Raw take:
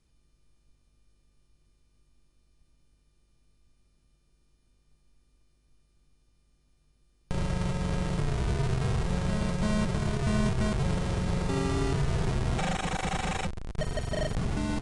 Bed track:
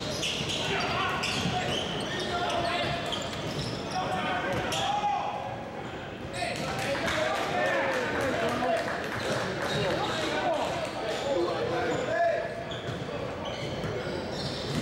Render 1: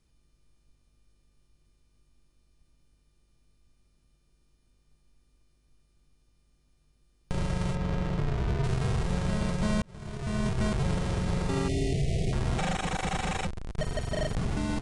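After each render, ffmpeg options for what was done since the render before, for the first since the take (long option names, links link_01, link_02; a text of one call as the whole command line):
ffmpeg -i in.wav -filter_complex "[0:a]asettb=1/sr,asplit=3[link_01][link_02][link_03];[link_01]atrim=end=7.754[link_04];[link_02]atrim=start=7.75:end=8.64,asetpts=PTS-STARTPTS,afade=type=in:duration=0.004:curve=qsin,afade=type=out:start_time=0.886:duration=0.004:curve=qsin,adynamicsmooth=sensitivity=2:basefreq=3400[link_05];[link_03]atrim=start=8.636[link_06];[link_04][link_05]acrossfade=duration=0.004:curve1=hsin:curve2=qsin[link_07];[link_07][link_06]acrossfade=duration=0.004:curve1=qsin:curve2=hsin,asettb=1/sr,asplit=3[link_08][link_09][link_10];[link_08]atrim=end=11.684[link_11];[link_09]atrim=start=11.68:end=12.33,asetpts=PTS-STARTPTS,afade=type=in:duration=0.004:curve=qsin,afade=type=out:start_time=0.646:duration=0.004:curve=qsin,asuperstop=centerf=1200:order=12:qfactor=0.98[link_12];[link_10]atrim=start=12.326[link_13];[link_11][link_12]acrossfade=duration=0.004:curve1=hsin:curve2=qsin[link_14];[link_14][link_13]acrossfade=duration=0.004:curve1=qsin:curve2=hsin,asplit=2[link_15][link_16];[link_15]atrim=end=9.82,asetpts=PTS-STARTPTS,afade=type=out:start_time=9.816:duration=0.004:curve=hsin[link_17];[link_16]atrim=start=9.82,asetpts=PTS-STARTPTS,afade=type=in:duration=0.82[link_18];[link_17][link_18]concat=n=2:v=0:a=1" out.wav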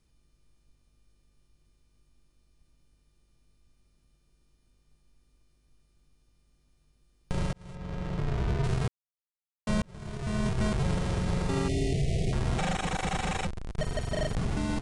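ffmpeg -i in.wav -filter_complex "[0:a]asplit=4[link_01][link_02][link_03][link_04];[link_01]atrim=end=7.53,asetpts=PTS-STARTPTS,afade=type=out:start_time=7.526:duration=0.004:curve=hsin[link_05];[link_02]atrim=start=7.53:end=8.88,asetpts=PTS-STARTPTS,afade=type=in:duration=0.84,afade=type=out:start_time=1.346:duration=0.004:curve=hsin[link_06];[link_03]atrim=start=8.88:end=9.67,asetpts=PTS-STARTPTS,volume=0[link_07];[link_04]atrim=start=9.67,asetpts=PTS-STARTPTS,afade=type=in:duration=0.004:curve=hsin[link_08];[link_05][link_06][link_07][link_08]concat=n=4:v=0:a=1" out.wav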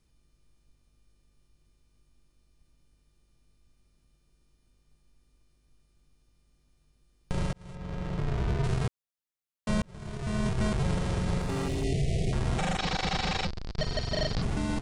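ffmpeg -i in.wav -filter_complex "[0:a]asplit=3[link_01][link_02][link_03];[link_01]afade=type=out:start_time=11.38:duration=0.02[link_04];[link_02]volume=27dB,asoftclip=hard,volume=-27dB,afade=type=in:start_time=11.38:duration=0.02,afade=type=out:start_time=11.83:duration=0.02[link_05];[link_03]afade=type=in:start_time=11.83:duration=0.02[link_06];[link_04][link_05][link_06]amix=inputs=3:normalize=0,asettb=1/sr,asplit=3[link_07][link_08][link_09];[link_07]atrim=end=12.784[link_10];[link_08]atrim=start=12.78:end=14.42,asetpts=PTS-STARTPTS,afade=type=in:duration=0.004:curve=qsin,afade=type=out:start_time=1.636:duration=0.004:curve=qsin,lowpass=frequency=4700:width_type=q:width=4.7[link_11];[link_09]atrim=start=14.416[link_12];[link_10][link_11]acrossfade=duration=0.004:curve1=hsin:curve2=qsin[link_13];[link_13][link_12]acrossfade=duration=0.004:curve1=qsin:curve2=hsin" out.wav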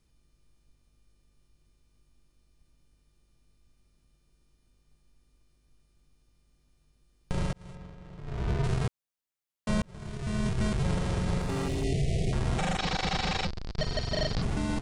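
ffmpeg -i in.wav -filter_complex "[0:a]asettb=1/sr,asplit=3[link_01][link_02][link_03];[link_01]atrim=end=10.074[link_04];[link_02]atrim=start=10.07:end=10.85,asetpts=PTS-STARTPTS,afade=type=in:duration=0.004:curve=qsin,afade=type=out:start_time=0.776:duration=0.004:curve=qsin,equalizer=frequency=790:width_type=o:width=1.7:gain=-3.5[link_05];[link_03]atrim=start=10.846[link_06];[link_04][link_05]acrossfade=duration=0.004:curve1=hsin:curve2=qsin[link_07];[link_07][link_06]acrossfade=duration=0.004:curve1=qsin:curve2=hsin,asplit=3[link_08][link_09][link_10];[link_08]atrim=end=7.94,asetpts=PTS-STARTPTS,afade=type=out:start_time=7.65:duration=0.29:silence=0.211349[link_11];[link_09]atrim=start=7.94:end=8.22,asetpts=PTS-STARTPTS,volume=-13.5dB[link_12];[link_10]atrim=start=8.22,asetpts=PTS-STARTPTS,afade=type=in:duration=0.29:silence=0.211349[link_13];[link_11][link_12][link_13]concat=n=3:v=0:a=1" out.wav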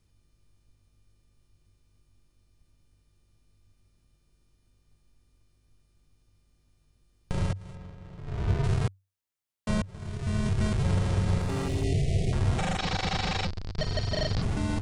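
ffmpeg -i in.wav -af "equalizer=frequency=96:width_type=o:width=0.22:gain=12.5" out.wav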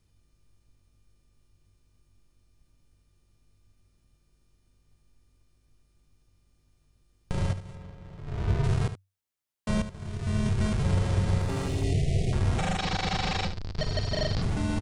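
ffmpeg -i in.wav -af "aecho=1:1:75:0.266" out.wav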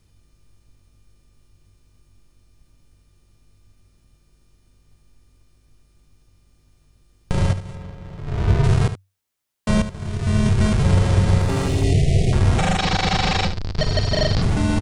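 ffmpeg -i in.wav -af "volume=9dB" out.wav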